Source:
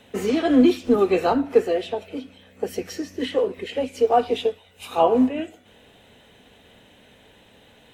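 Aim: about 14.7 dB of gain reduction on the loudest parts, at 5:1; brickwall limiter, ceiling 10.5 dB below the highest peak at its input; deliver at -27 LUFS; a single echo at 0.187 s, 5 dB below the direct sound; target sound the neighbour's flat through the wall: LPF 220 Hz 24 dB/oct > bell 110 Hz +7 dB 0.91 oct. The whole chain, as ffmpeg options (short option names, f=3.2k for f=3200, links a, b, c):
-af "acompressor=threshold=-28dB:ratio=5,alimiter=level_in=3dB:limit=-24dB:level=0:latency=1,volume=-3dB,lowpass=f=220:w=0.5412,lowpass=f=220:w=1.3066,equalizer=f=110:t=o:w=0.91:g=7,aecho=1:1:187:0.562,volume=19.5dB"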